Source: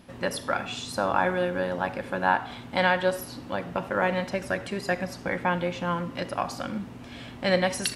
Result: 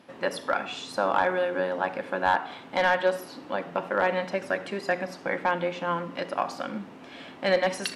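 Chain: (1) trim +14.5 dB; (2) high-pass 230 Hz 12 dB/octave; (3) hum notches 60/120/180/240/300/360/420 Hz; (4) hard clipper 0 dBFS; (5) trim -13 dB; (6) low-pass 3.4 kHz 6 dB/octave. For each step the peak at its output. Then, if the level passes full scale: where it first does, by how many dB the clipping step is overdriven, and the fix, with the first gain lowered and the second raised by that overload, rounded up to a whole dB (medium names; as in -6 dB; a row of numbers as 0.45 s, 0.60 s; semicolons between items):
+6.5 dBFS, +7.5 dBFS, +7.0 dBFS, 0.0 dBFS, -13.0 dBFS, -13.0 dBFS; step 1, 7.0 dB; step 1 +7.5 dB, step 5 -6 dB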